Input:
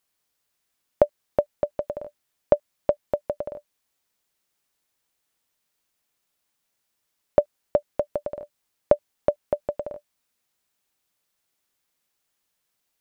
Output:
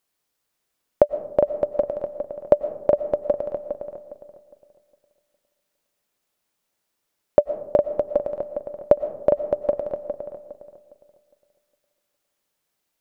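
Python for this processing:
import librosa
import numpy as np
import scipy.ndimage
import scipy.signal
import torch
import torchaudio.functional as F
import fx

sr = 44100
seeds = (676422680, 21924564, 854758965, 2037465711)

p1 = fx.peak_eq(x, sr, hz=420.0, db=4.0, octaves=2.2)
p2 = p1 + fx.echo_filtered(p1, sr, ms=409, feedback_pct=30, hz=2000.0, wet_db=-5.0, dry=0)
p3 = fx.rev_freeverb(p2, sr, rt60_s=0.91, hf_ratio=0.35, predelay_ms=75, drr_db=13.0)
y = p3 * 10.0 ** (-1.0 / 20.0)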